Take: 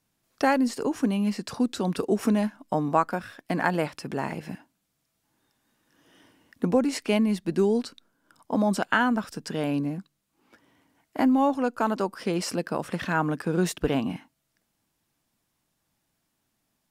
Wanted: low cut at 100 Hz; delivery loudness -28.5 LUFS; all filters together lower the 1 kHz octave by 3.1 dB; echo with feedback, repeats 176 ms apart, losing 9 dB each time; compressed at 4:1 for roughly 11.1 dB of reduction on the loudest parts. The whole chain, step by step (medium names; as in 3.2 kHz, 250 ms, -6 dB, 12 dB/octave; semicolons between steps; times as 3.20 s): high-pass 100 Hz; peaking EQ 1 kHz -4 dB; compression 4:1, threshold -32 dBFS; feedback delay 176 ms, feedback 35%, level -9 dB; trim +7 dB